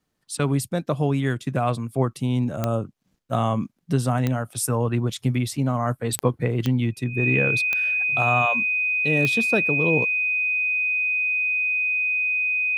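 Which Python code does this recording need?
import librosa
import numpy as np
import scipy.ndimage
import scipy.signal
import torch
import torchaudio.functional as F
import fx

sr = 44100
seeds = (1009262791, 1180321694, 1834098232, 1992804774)

y = fx.fix_declick_ar(x, sr, threshold=10.0)
y = fx.notch(y, sr, hz=2500.0, q=30.0)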